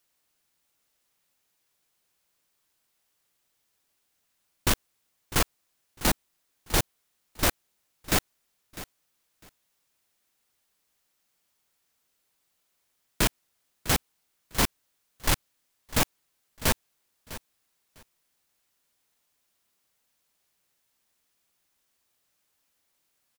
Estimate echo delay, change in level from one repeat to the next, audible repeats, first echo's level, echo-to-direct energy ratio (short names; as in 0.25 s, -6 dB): 0.652 s, -15.0 dB, 2, -16.0 dB, -16.0 dB